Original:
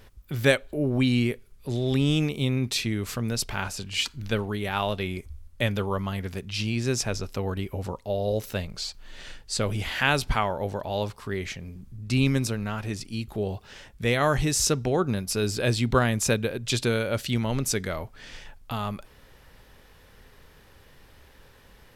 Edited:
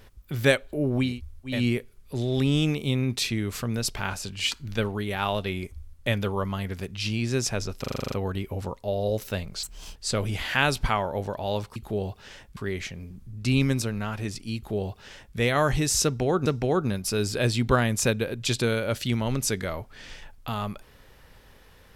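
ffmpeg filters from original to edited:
-filter_complex "[0:a]asplit=16[a][b][c][d][e][f][g][h][i][j][k][l][m][n][o][p];[a]atrim=end=1.21[q];[b]atrim=start=5.05:end=5.75[r];[c]atrim=start=0.97:end=7.382[s];[d]atrim=start=7.338:end=7.382[t];[e]atrim=start=7.338:end=7.382[u];[f]atrim=start=7.338:end=7.382[v];[g]atrim=start=7.338:end=7.382[w];[h]atrim=start=7.338:end=7.382[x];[i]atrim=start=7.338:end=7.382[y];[j]atrim=start=7.338:end=7.382[z];[k]atrim=start=7.338:end=8.854[aa];[l]atrim=start=8.85:end=9.42,asetpts=PTS-STARTPTS,asetrate=76734,aresample=44100[ab];[m]atrim=start=9.416:end=11.222[ac];[n]atrim=start=13.208:end=14.022[ad];[o]atrim=start=11.218:end=15.112[ae];[p]atrim=start=14.688[af];[q][r]acrossfade=d=0.24:c1=tri:c2=tri[ag];[ag][s]acrossfade=d=0.24:c1=tri:c2=tri[ah];[ah][t]acrossfade=d=0.004:c1=hsin:c2=hsin[ai];[ai][u]acrossfade=d=0.004:c1=hsin:c2=hsin[aj];[aj][v]acrossfade=d=0.004:c1=hsin:c2=hsin[ak];[ak][w]acrossfade=d=0.004:c1=hsin:c2=hsin[al];[al][x]acrossfade=d=0.004:c1=hsin:c2=hsin[am];[am][y]acrossfade=d=0.004:c1=hsin:c2=hsin[an];[an][z]acrossfade=d=0.004:c1=hsin:c2=hsin[ao];[ao][aa]acrossfade=d=0.004:c1=hsin:c2=hsin[ap];[ap][ab]acrossfade=d=0.004:c1=hsin:c2=hsin[aq];[aq][ac]acrossfade=d=0.004:c1=hsin:c2=hsin[ar];[ar][ad]acrossfade=d=0.004:c1=hsin:c2=hsin[as];[as][ae]acrossfade=d=0.004:c1=hsin:c2=hsin[at];[at][af]acrossfade=d=0.004:c1=hsin:c2=hsin"

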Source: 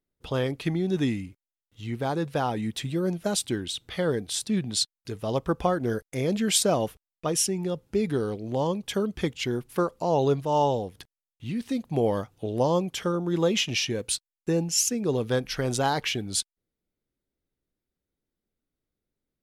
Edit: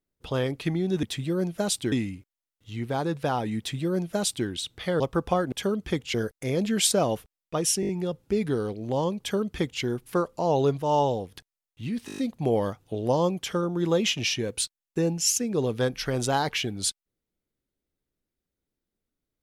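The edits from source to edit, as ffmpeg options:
-filter_complex "[0:a]asplit=16[a][b][c][d][e][f][g][h][i][j][k][l][m][n][o][p];[a]atrim=end=1.032[q];[b]atrim=start=2.688:end=3.582[r];[c]atrim=start=1.028:end=4.112[s];[d]atrim=start=5.328:end=5.852[t];[e]atrim=start=8.828:end=9.452[u];[f]atrim=start=5.848:end=7.542[v];[g]atrim=start=7.518:end=7.542[w];[h]atrim=start=7.518:end=7.542[x];[i]atrim=start=7.518:end=7.542[y];[j]atrim=start=7.518:end=11.712[z];[k]atrim=start=11.688:end=11.712[aa];[l]atrim=start=11.688:end=11.712[ab];[m]atrim=start=11.688:end=11.712[ac];[n]atrim=start=11.688:end=11.712[ad];[o]atrim=start=11.688:end=11.712[ae];[p]atrim=start=11.688[af];[q][r]acrossfade=d=0.004:c1=hsin:c2=hsin[ag];[ag][s]acrossfade=d=0.004:c1=hsin:c2=hsin[ah];[ah][t]acrossfade=d=0.004:c1=hsin:c2=hsin[ai];[ai][u]acrossfade=d=0.004:c1=hsin:c2=hsin[aj];[aj][v]acrossfade=d=0.004:c1=hsin:c2=hsin[ak];[ak][w]acrossfade=d=0.004:c1=hsin:c2=hsin[al];[al][x]acrossfade=d=0.004:c1=hsin:c2=hsin[am];[am][y]acrossfade=d=0.004:c1=hsin:c2=hsin[an];[an][z]acrossfade=d=0.004:c1=hsin:c2=hsin[ao];[ao][aa]acrossfade=d=0.004:c1=hsin:c2=hsin[ap];[ap][ab]acrossfade=d=0.004:c1=hsin:c2=hsin[aq];[aq][ac]acrossfade=d=0.004:c1=hsin:c2=hsin[ar];[ar][ad]acrossfade=d=0.004:c1=hsin:c2=hsin[as];[as][ae]acrossfade=d=0.004:c1=hsin:c2=hsin[at];[at][af]acrossfade=d=0.004:c1=hsin:c2=hsin"

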